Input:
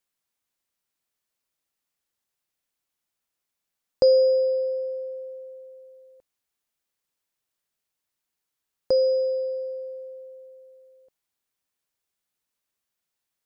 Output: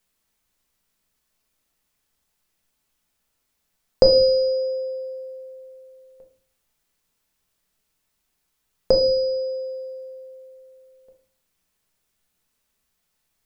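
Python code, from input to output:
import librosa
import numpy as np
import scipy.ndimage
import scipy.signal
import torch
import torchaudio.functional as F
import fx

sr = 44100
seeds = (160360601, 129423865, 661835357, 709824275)

y = fx.low_shelf(x, sr, hz=87.0, db=10.5)
y = fx.room_shoebox(y, sr, seeds[0], volume_m3=430.0, walls='furnished', distance_m=1.5)
y = y * librosa.db_to_amplitude(7.5)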